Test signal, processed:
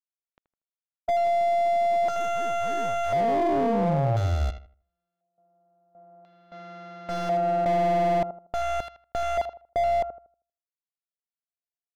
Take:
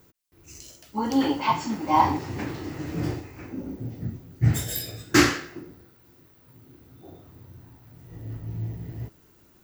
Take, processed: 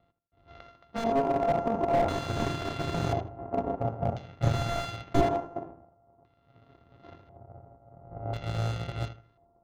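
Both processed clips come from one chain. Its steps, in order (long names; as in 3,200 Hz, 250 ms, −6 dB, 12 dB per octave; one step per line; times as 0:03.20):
samples sorted by size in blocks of 64 samples
low-pass that shuts in the quiet parts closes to 1,000 Hz, open at −25.5 dBFS
parametric band 6,400 Hz +14 dB 0.27 octaves
in parallel at +2 dB: compressor whose output falls as the input rises −29 dBFS, ratio −0.5
on the sum: power curve on the samples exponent 1.4
auto-filter low-pass square 0.48 Hz 760–3,700 Hz
on a send: feedback echo with a low-pass in the loop 79 ms, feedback 30%, low-pass 2,000 Hz, level −12.5 dB
on the sum: slew-rate limiting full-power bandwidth 58 Hz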